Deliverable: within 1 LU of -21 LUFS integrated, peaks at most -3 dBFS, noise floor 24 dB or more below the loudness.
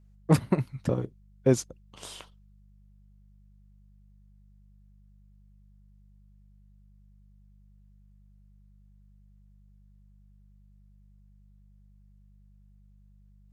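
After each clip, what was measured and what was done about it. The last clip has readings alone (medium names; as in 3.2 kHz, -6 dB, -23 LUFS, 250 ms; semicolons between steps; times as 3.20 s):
hum 50 Hz; highest harmonic 200 Hz; hum level -54 dBFS; loudness -29.0 LUFS; peak level -8.0 dBFS; loudness target -21.0 LUFS
-> de-hum 50 Hz, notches 4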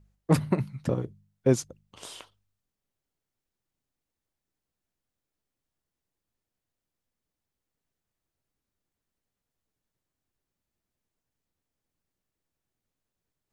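hum not found; loudness -28.0 LUFS; peak level -8.5 dBFS; loudness target -21.0 LUFS
-> trim +7 dB; peak limiter -3 dBFS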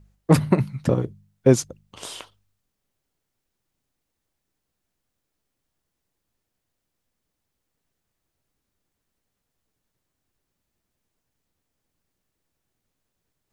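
loudness -21.5 LUFS; peak level -3.0 dBFS; noise floor -81 dBFS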